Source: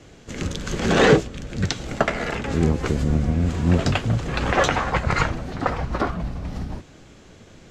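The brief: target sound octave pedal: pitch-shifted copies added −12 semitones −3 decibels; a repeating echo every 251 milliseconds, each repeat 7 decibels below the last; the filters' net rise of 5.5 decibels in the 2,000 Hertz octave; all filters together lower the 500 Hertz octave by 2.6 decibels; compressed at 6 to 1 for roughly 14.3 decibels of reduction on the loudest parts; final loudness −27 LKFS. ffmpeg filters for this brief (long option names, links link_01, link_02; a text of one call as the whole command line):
ffmpeg -i in.wav -filter_complex "[0:a]equalizer=frequency=500:width_type=o:gain=-3.5,equalizer=frequency=2000:width_type=o:gain=7,acompressor=threshold=-26dB:ratio=6,aecho=1:1:251|502|753|1004|1255:0.447|0.201|0.0905|0.0407|0.0183,asplit=2[link_01][link_02];[link_02]asetrate=22050,aresample=44100,atempo=2,volume=-3dB[link_03];[link_01][link_03]amix=inputs=2:normalize=0,volume=1.5dB" out.wav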